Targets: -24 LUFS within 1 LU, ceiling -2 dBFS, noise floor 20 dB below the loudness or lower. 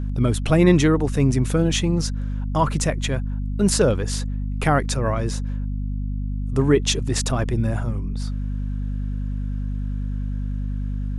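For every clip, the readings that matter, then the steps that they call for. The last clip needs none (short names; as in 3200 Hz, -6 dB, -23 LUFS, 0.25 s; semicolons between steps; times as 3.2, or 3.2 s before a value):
hum 50 Hz; harmonics up to 250 Hz; hum level -23 dBFS; loudness -23.0 LUFS; peak -3.0 dBFS; loudness target -24.0 LUFS
-> de-hum 50 Hz, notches 5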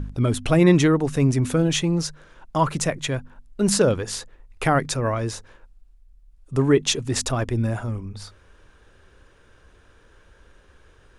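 hum none; loudness -22.0 LUFS; peak -4.0 dBFS; loudness target -24.0 LUFS
-> gain -2 dB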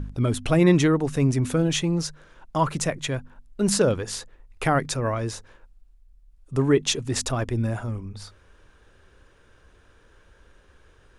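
loudness -24.0 LUFS; peak -6.0 dBFS; noise floor -57 dBFS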